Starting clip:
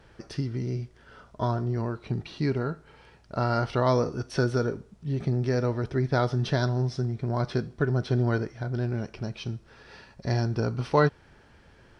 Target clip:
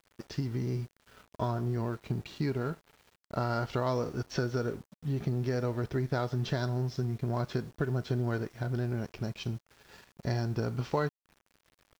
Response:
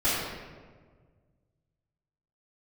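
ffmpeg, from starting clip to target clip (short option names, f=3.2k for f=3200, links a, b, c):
-af "acompressor=threshold=-28dB:ratio=3,aresample=16000,aeval=exprs='sgn(val(0))*max(abs(val(0))-0.00282,0)':c=same,aresample=44100,acrusher=bits=9:mix=0:aa=0.000001"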